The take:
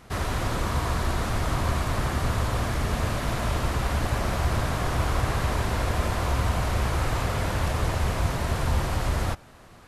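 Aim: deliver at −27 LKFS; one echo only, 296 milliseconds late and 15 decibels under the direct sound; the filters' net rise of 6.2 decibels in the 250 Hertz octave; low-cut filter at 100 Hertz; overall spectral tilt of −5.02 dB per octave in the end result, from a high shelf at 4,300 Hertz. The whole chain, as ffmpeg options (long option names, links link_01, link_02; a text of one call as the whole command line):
ffmpeg -i in.wav -af "highpass=100,equalizer=frequency=250:width_type=o:gain=8.5,highshelf=frequency=4300:gain=4,aecho=1:1:296:0.178,volume=-0.5dB" out.wav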